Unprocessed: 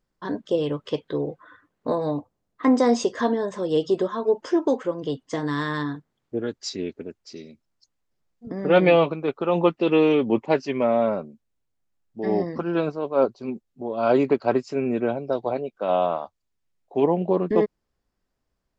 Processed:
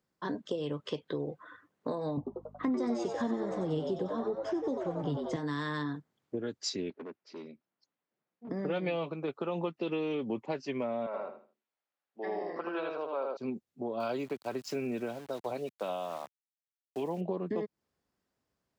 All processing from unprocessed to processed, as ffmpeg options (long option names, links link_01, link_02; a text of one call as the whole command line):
ffmpeg -i in.wav -filter_complex "[0:a]asettb=1/sr,asplit=3[link_01][link_02][link_03];[link_01]atrim=end=2.174[link_04];[link_02]atrim=start=2.17:end=5.36,asetpts=PTS-STARTPTS,afade=type=in:duration=0.004:curve=qsin,afade=type=out:start_time=3.186:duration=0.004:curve=qsin,bass=frequency=250:gain=13,treble=frequency=4000:gain=-6,asplit=8[link_05][link_06][link_07][link_08][link_09][link_10][link_11][link_12];[link_06]adelay=93,afreqshift=110,volume=-7dB[link_13];[link_07]adelay=186,afreqshift=220,volume=-12.4dB[link_14];[link_08]adelay=279,afreqshift=330,volume=-17.7dB[link_15];[link_09]adelay=372,afreqshift=440,volume=-23.1dB[link_16];[link_10]adelay=465,afreqshift=550,volume=-28.4dB[link_17];[link_11]adelay=558,afreqshift=660,volume=-33.8dB[link_18];[link_12]adelay=651,afreqshift=770,volume=-39.1dB[link_19];[link_05][link_13][link_14][link_15][link_16][link_17][link_18][link_19]amix=inputs=8:normalize=0,atrim=end_sample=140679,aeval=exprs='val(0)+0.00398*(sin(2*PI*50*n/s)+sin(2*PI*2*50*n/s)/2+sin(2*PI*3*50*n/s)/3+sin(2*PI*4*50*n/s)/4+sin(2*PI*5*50*n/s)/5)':channel_layout=same[link_20];[link_03]atrim=start=5.356[link_21];[link_04][link_20]acrossfade=duration=0.004:curve1=hsin:curve2=qsin[link_22];[link_22][link_21]acrossfade=duration=0.004:curve1=qsin:curve2=hsin,asettb=1/sr,asplit=3[link_23][link_24][link_25];[link_23]atrim=end=6.904[link_26];[link_24]atrim=start=6.9:end=8.49,asetpts=PTS-STARTPTS,afade=type=in:duration=0.004:curve=qsin,afade=type=out:start_time=1.586:duration=0.004:curve=qsin,asoftclip=type=hard:threshold=-36.5dB,highpass=190,lowpass=2800[link_27];[link_25]atrim=start=8.486[link_28];[link_26][link_27]acrossfade=duration=0.004:curve1=hsin:curve2=qsin[link_29];[link_29][link_28]acrossfade=duration=0.004:curve1=qsin:curve2=hsin,asettb=1/sr,asplit=3[link_30][link_31][link_32];[link_30]atrim=end=11.064[link_33];[link_31]atrim=start=11.06:end=13.37,asetpts=PTS-STARTPTS,afade=type=in:duration=0.004:curve=qsin,afade=type=out:start_time=2.306:duration=0.004:curve=qsin,highpass=590,lowpass=3300,aecho=1:1:79|158|237|316:0.708|0.184|0.0479|0.0124,atrim=end_sample=101871[link_34];[link_32]atrim=start=13.366[link_35];[link_33][link_34]acrossfade=duration=0.004:curve1=hsin:curve2=qsin[link_36];[link_36][link_35]acrossfade=duration=0.004:curve1=qsin:curve2=hsin,asettb=1/sr,asplit=3[link_37][link_38][link_39];[link_37]atrim=end=14.004[link_40];[link_38]atrim=start=14:end=17.21,asetpts=PTS-STARTPTS,afade=type=in:duration=0.004:curve=qsin,afade=type=out:start_time=3.206:duration=0.004:curve=qsin,highshelf=frequency=2000:gain=8,tremolo=f=1.2:d=0.67,aeval=exprs='val(0)*gte(abs(val(0)),0.00708)':channel_layout=same[link_41];[link_39]atrim=start=17.206[link_42];[link_40][link_41]acrossfade=duration=0.004:curve1=hsin:curve2=qsin[link_43];[link_43][link_42]acrossfade=duration=0.004:curve1=qsin:curve2=hsin,acompressor=threshold=-28dB:ratio=2.5,highpass=100,acrossover=split=170|3000[link_44][link_45][link_46];[link_45]acompressor=threshold=-32dB:ratio=2[link_47];[link_44][link_47][link_46]amix=inputs=3:normalize=0,volume=-2dB" out.wav